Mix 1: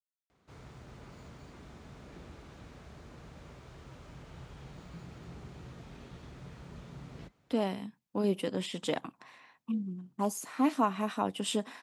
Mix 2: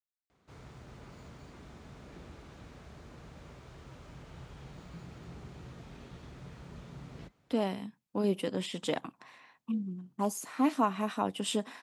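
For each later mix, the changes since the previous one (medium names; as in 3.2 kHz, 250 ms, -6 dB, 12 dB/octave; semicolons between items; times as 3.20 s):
no change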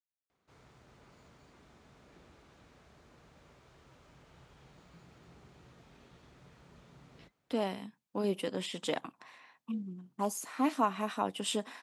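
background -6.5 dB; master: add bass shelf 250 Hz -7 dB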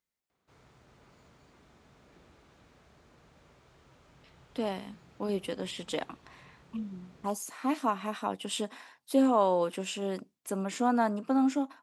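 speech: entry -2.95 s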